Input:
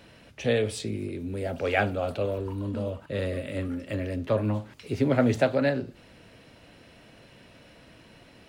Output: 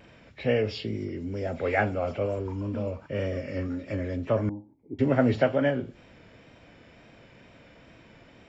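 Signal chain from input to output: knee-point frequency compression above 1.7 kHz 1.5:1; wow and flutter 40 cents; 4.49–4.99 s: cascade formant filter u

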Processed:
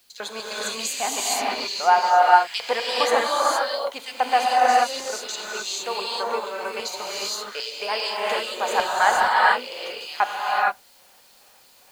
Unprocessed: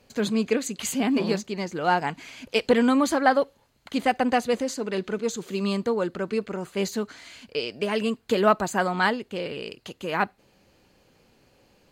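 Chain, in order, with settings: LFO high-pass square 2.5 Hz 790–3900 Hz; in parallel at -11 dB: word length cut 8-bit, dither triangular; on the sum: hum notches 60/120/180 Hz; gated-style reverb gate 490 ms rising, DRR -5.5 dB; trim -3.5 dB

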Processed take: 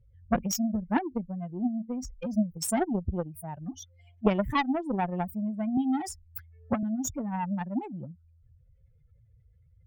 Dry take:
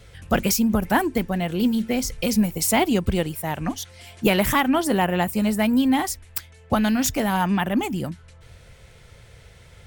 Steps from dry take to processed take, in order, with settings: spectral contrast enhancement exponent 2.7; Chebyshev shaper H 3 -12 dB, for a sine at -8.5 dBFS; 5.77–6.83 s: three bands compressed up and down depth 70%

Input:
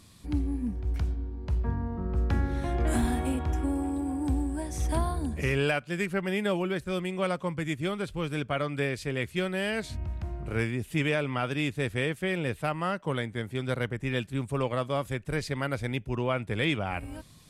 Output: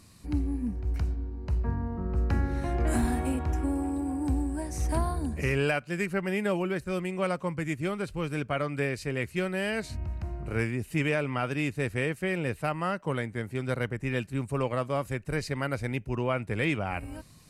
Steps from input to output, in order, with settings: band-stop 3.4 kHz, Q 5.2

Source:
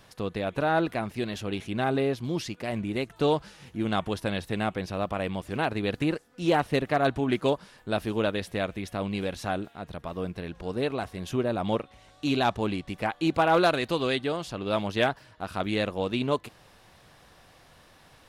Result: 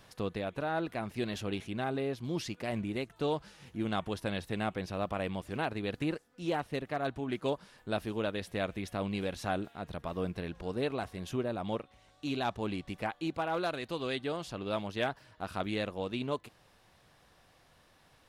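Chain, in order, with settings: gain riding within 5 dB 0.5 s; trim -7 dB

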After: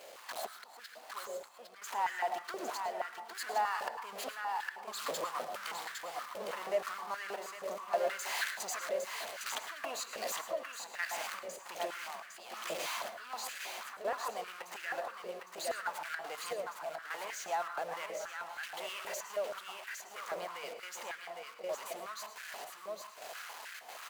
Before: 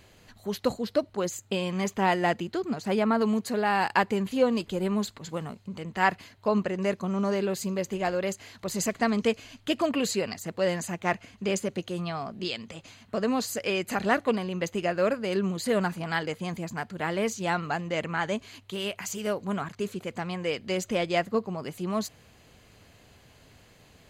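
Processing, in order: jump at every zero crossing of -27 dBFS; Doppler pass-by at 7.35 s, 7 m/s, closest 7.3 m; slow attack 645 ms; compression 6:1, threshold -45 dBFS, peak gain reduction 21.5 dB; trance gate "...xxxxxx.xxx..." 157 bpm -12 dB; delay 808 ms -5 dB; on a send at -7.5 dB: reverberation RT60 0.45 s, pre-delay 97 ms; on the sum: step-sequenced high-pass 6.3 Hz 560–1600 Hz; trim +7.5 dB

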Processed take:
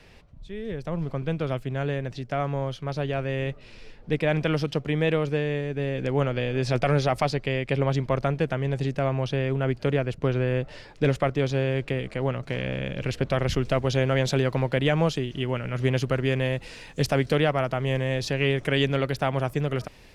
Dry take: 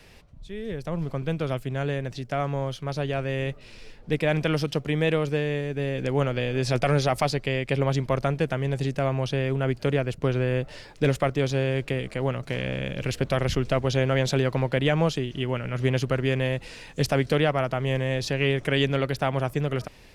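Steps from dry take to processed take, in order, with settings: treble shelf 7.5 kHz -11.5 dB, from 13.49 s -2 dB

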